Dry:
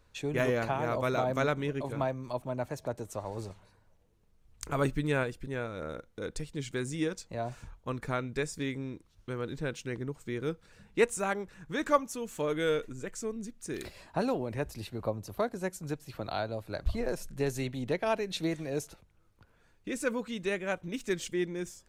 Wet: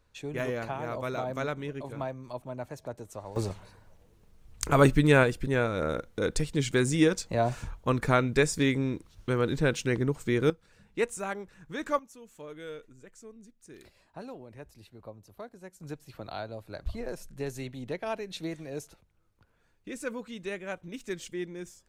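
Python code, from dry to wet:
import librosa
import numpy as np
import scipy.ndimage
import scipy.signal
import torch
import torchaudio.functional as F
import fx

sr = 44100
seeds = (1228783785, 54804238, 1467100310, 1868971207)

y = fx.gain(x, sr, db=fx.steps((0.0, -3.5), (3.36, 9.0), (10.5, -3.0), (11.99, -12.5), (15.8, -4.0)))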